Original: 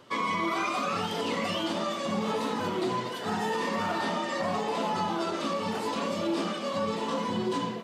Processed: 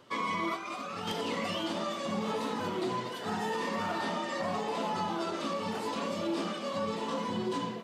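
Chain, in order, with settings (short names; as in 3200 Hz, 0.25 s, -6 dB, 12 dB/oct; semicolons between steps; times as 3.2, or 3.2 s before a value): 0.55–1.12 negative-ratio compressor -33 dBFS, ratio -0.5; gain -3.5 dB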